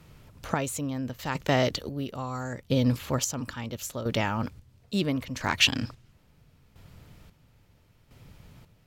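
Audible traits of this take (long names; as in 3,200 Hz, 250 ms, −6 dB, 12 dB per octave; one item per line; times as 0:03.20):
chopped level 0.74 Hz, depth 65%, duty 40%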